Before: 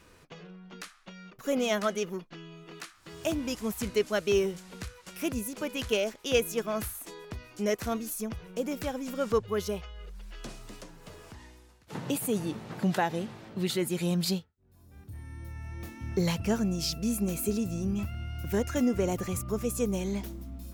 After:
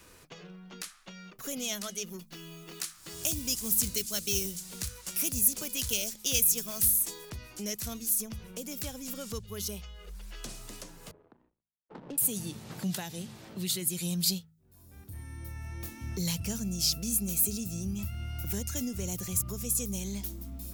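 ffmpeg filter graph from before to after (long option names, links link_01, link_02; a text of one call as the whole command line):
ffmpeg -i in.wav -filter_complex "[0:a]asettb=1/sr,asplit=3[link_01][link_02][link_03];[link_01]atrim=end=2.194[link_04];[link_02]atrim=start=2.19:end=7.3,asetpts=PTS-STARTPTS,afade=type=in:duration=0.004:curve=qsin,afade=type=out:start_time=5.106:duration=0.004:curve=qsin,acrusher=bits=6:mode=log:mix=0:aa=0.000001,bass=frequency=250:gain=2,treble=frequency=4000:gain=6[link_05];[link_03]atrim=start=7.296[link_06];[link_04][link_05]acrossfade=duration=0.004:curve1=hsin:curve2=qsin[link_07];[link_07][link_06]acrossfade=duration=0.004:curve1=qsin:curve2=hsin,asettb=1/sr,asplit=3[link_08][link_09][link_10];[link_08]atrim=end=11.114[link_11];[link_09]atrim=start=11.11:end=12.18,asetpts=PTS-STARTPTS,afade=type=in:duration=0.004:curve=qsin,afade=type=out:start_time=1.066:duration=0.004:curve=qsin,acrossover=split=190 2100:gain=0.0708 1 0.178[link_12][link_13][link_14];[link_12][link_13][link_14]amix=inputs=3:normalize=0,aeval=exprs='sgn(val(0))*max(abs(val(0))-0.00188,0)':channel_layout=same,adynamicsmooth=sensitivity=6:basefreq=580[link_15];[link_10]atrim=start=12.176[link_16];[link_11][link_15]acrossfade=duration=0.004:curve1=hsin:curve2=qsin[link_17];[link_17][link_16]acrossfade=duration=0.004:curve1=qsin:curve2=hsin,highshelf=frequency=5700:gain=11.5,bandreject=frequency=53.68:width_type=h:width=4,bandreject=frequency=107.36:width_type=h:width=4,bandreject=frequency=161.04:width_type=h:width=4,bandreject=frequency=214.72:width_type=h:width=4,acrossover=split=180|3000[link_18][link_19][link_20];[link_19]acompressor=threshold=-46dB:ratio=3[link_21];[link_18][link_21][link_20]amix=inputs=3:normalize=0" out.wav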